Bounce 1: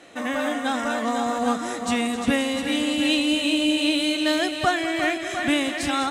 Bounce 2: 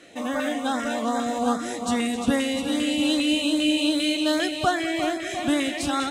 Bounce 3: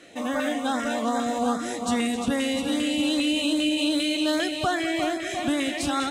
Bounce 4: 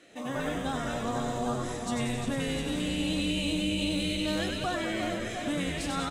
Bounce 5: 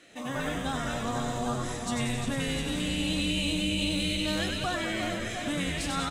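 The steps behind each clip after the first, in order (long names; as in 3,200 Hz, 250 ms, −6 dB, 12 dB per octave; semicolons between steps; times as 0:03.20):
auto-filter notch saw up 2.5 Hz 790–3,100 Hz
brickwall limiter −15 dBFS, peak gain reduction 5 dB
echo with shifted repeats 95 ms, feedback 55%, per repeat −110 Hz, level −4 dB; level −7.5 dB
parametric band 430 Hz −5 dB 2.1 octaves; level +3 dB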